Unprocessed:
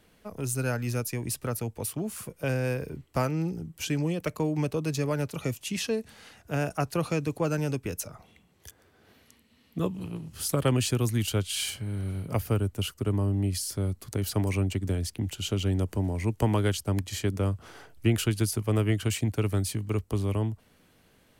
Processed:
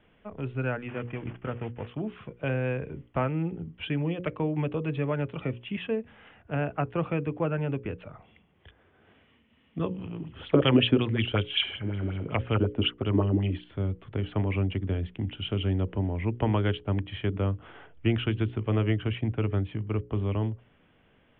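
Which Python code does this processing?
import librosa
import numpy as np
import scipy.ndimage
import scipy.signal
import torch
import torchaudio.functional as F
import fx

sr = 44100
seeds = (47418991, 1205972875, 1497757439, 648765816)

y = fx.cvsd(x, sr, bps=16000, at=(0.88, 1.87))
y = fx.peak_eq(y, sr, hz=5400.0, db=-15.0, octaves=0.77, at=(5.45, 7.98))
y = fx.bell_lfo(y, sr, hz=5.4, low_hz=260.0, high_hz=3600.0, db=14, at=(10.2, 13.64))
y = fx.lowpass(y, sr, hz=2900.0, slope=6, at=(18.92, 20.23))
y = scipy.signal.sosfilt(scipy.signal.butter(16, 3400.0, 'lowpass', fs=sr, output='sos'), y)
y = fx.hum_notches(y, sr, base_hz=60, count=9)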